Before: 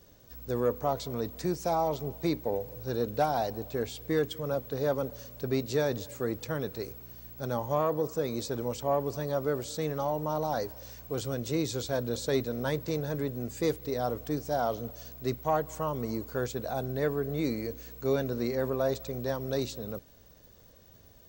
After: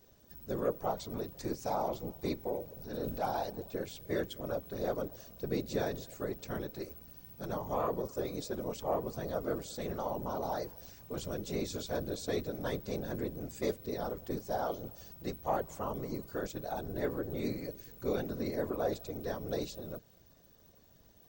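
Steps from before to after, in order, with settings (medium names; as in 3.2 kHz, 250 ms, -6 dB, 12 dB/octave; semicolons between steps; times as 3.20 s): 2.82–3.25 s: transient shaper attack -8 dB, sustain +6 dB; whisper effect; trim -5.5 dB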